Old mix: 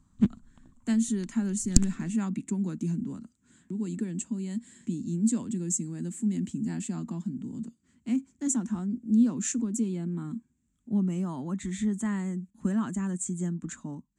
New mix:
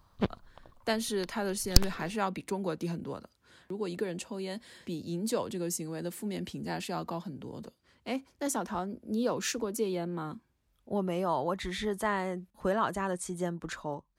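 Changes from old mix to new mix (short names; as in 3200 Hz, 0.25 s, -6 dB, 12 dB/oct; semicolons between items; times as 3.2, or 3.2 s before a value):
speech: remove HPF 61 Hz; master: remove EQ curve 120 Hz 0 dB, 240 Hz +12 dB, 500 Hz -17 dB, 1800 Hz -7 dB, 2700 Hz -8 dB, 5000 Hz -12 dB, 7500 Hz +12 dB, 12000 Hz -19 dB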